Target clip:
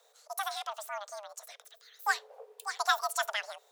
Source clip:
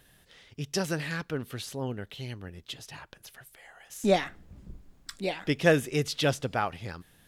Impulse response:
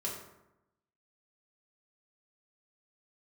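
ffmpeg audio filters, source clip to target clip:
-filter_complex "[0:a]afreqshift=210,asetrate=86436,aresample=44100,asplit=2[link_01][link_02];[1:a]atrim=start_sample=2205,atrim=end_sample=3969[link_03];[link_02][link_03]afir=irnorm=-1:irlink=0,volume=-24.5dB[link_04];[link_01][link_04]amix=inputs=2:normalize=0,volume=-5dB"

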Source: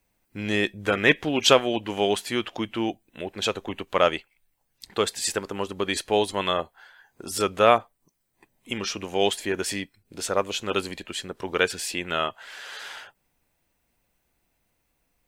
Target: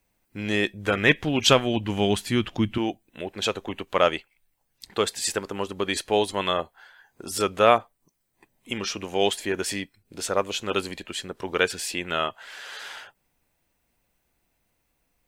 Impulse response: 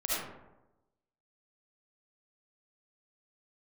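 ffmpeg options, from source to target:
-filter_complex "[0:a]asettb=1/sr,asplit=3[link_01][link_02][link_03];[link_01]atrim=end=0.734[link_04];[link_02]atrim=start=0.73:end=2.78,asetpts=PTS-STARTPTS,afade=type=in:duration=0.004:curve=qsin,afade=type=out:start_time=2.046:duration=0.004:curve=qsin,asubboost=boost=9.5:cutoff=220[link_05];[link_03]atrim=start=2.776[link_06];[link_04][link_05]acrossfade=duration=0.004:curve1=hsin:curve2=qsin[link_07];[link_07][link_06]acrossfade=duration=0.004:curve1=qsin:curve2=hsin"

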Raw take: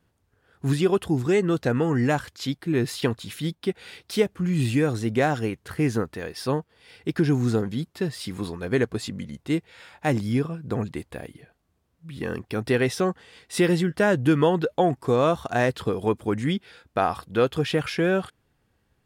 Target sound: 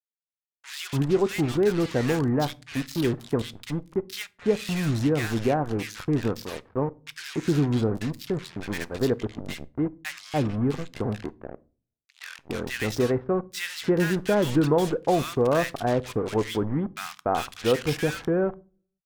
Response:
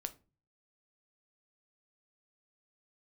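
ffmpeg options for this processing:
-filter_complex "[0:a]lowpass=frequency=7300:width=0.5412,lowpass=frequency=7300:width=1.3066,equalizer=frequency=120:width_type=o:width=1.1:gain=-3,acrusher=bits=4:mix=0:aa=0.5,acrossover=split=1400[link_01][link_02];[link_01]adelay=290[link_03];[link_03][link_02]amix=inputs=2:normalize=0,asplit=2[link_04][link_05];[1:a]atrim=start_sample=2205,asetrate=37044,aresample=44100,lowshelf=frequency=130:gain=10[link_06];[link_05][link_06]afir=irnorm=-1:irlink=0,volume=-5dB[link_07];[link_04][link_07]amix=inputs=2:normalize=0,volume=-4.5dB"

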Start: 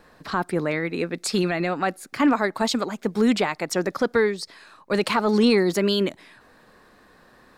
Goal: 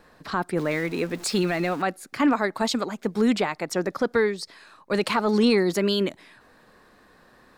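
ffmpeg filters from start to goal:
ffmpeg -i in.wav -filter_complex "[0:a]asettb=1/sr,asplit=3[link_01][link_02][link_03];[link_01]atrim=end=0.574[link_04];[link_02]atrim=start=0.57:end=1.82,asetpts=PTS-STARTPTS,afade=type=in:duration=0.004:curve=qsin,afade=type=out:start_time=1.246:duration=0.004:curve=qsin,aeval=exprs='val(0)+0.5*0.0168*sgn(val(0))':channel_layout=same[link_05];[link_03]atrim=start=1.816[link_06];[link_04][link_05]acrossfade=duration=0.004:curve1=hsin:curve2=qsin[link_07];[link_07][link_06]acrossfade=duration=0.004:curve1=qsin:curve2=hsin,asplit=3[link_08][link_09][link_10];[link_08]afade=type=out:start_time=2.93:duration=0.02[link_11];[link_09]adynamicequalizer=threshold=0.0178:dfrequency=1700:dqfactor=0.7:tfrequency=1700:tqfactor=0.7:attack=5:release=100:ratio=0.375:range=1.5:mode=cutabove:tftype=highshelf,afade=type=in:start_time=2.93:duration=0.02,afade=type=out:start_time=4.11:duration=0.02[link_12];[link_10]afade=type=in:start_time=4.11:duration=0.02[link_13];[link_11][link_12][link_13]amix=inputs=3:normalize=0,volume=-1.5dB" out.wav

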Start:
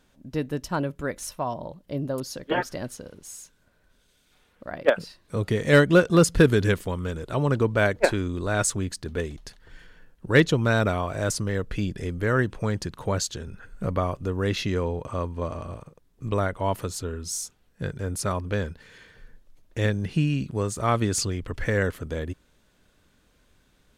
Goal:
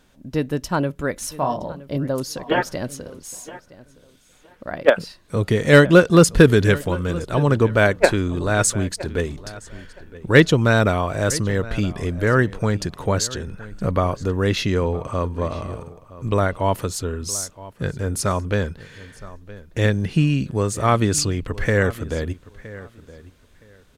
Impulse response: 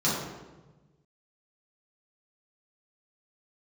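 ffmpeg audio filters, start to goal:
-filter_complex "[0:a]asettb=1/sr,asplit=3[link_01][link_02][link_03];[link_01]atrim=end=1.354[link_04];[link_02]atrim=start=1.35:end=1.97,asetpts=PTS-STARTPTS,afade=type=in:duration=0.004:curve=qsin,afade=type=out:start_time=0.616:duration=0.004:curve=qsin,asplit=2[link_05][link_06];[link_06]adelay=29,volume=-4.5dB[link_07];[link_05][link_07]amix=inputs=2:normalize=0,atrim=end_sample=27342[link_08];[link_03]atrim=start=1.966[link_09];[link_04][link_08]acrossfade=duration=0.004:curve1=hsin:curve2=qsin[link_10];[link_10][link_09]acrossfade=duration=0.004:curve1=qsin:curve2=hsin,asplit=2[link_11][link_12];[link_12]adelay=967,lowpass=frequency=4100:poles=1,volume=-18dB,asplit=2[link_13][link_14];[link_14]adelay=967,lowpass=frequency=4100:poles=1,volume=0.2[link_15];[link_11][link_13][link_15]amix=inputs=3:normalize=0,volume=5.5dB"

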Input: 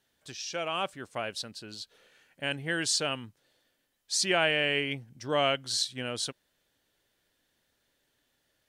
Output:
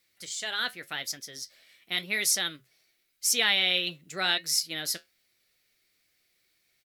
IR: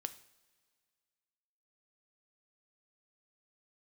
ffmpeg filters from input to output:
-af "firequalizer=gain_entry='entry(390,0);entry(720,-8);entry(1100,7);entry(5500,-3)':delay=0.05:min_phase=1,asetrate=56007,aresample=44100,flanger=delay=8.2:depth=4.1:regen=-65:speed=0.89:shape=sinusoidal,crystalizer=i=2.5:c=0"

